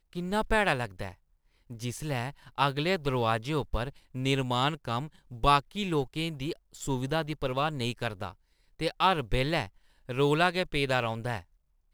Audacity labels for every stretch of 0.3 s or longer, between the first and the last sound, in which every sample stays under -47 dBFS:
1.140000	1.700000	silence
8.330000	8.790000	silence
9.680000	10.090000	silence